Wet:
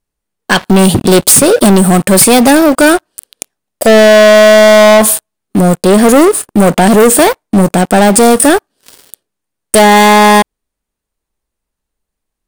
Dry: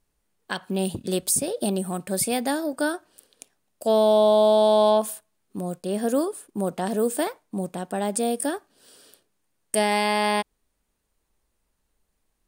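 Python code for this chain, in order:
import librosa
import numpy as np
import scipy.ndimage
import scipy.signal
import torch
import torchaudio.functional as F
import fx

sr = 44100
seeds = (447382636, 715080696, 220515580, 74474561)

y = fx.leveller(x, sr, passes=5)
y = F.gain(torch.from_numpy(y), 7.5).numpy()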